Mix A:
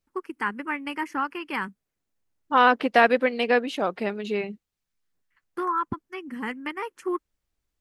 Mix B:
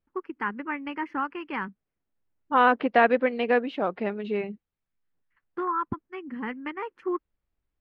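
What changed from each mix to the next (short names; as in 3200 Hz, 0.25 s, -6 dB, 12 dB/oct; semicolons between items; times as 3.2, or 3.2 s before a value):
master: add air absorption 360 m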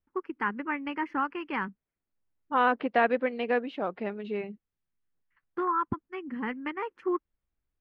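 second voice -4.5 dB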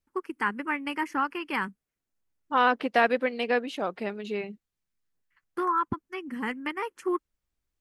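master: remove air absorption 360 m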